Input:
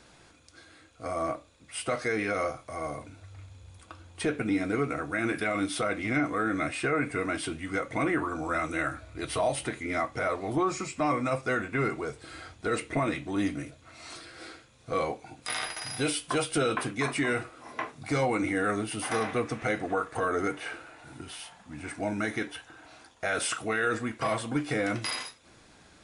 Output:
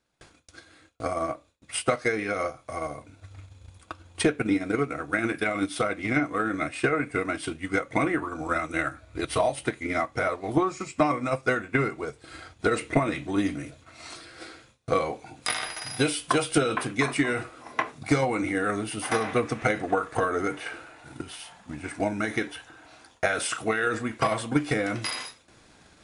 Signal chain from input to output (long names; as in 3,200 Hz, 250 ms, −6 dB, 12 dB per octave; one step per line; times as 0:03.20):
noise gate with hold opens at −46 dBFS
transient designer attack +9 dB, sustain −5 dB, from 0:12.60 sustain +3 dB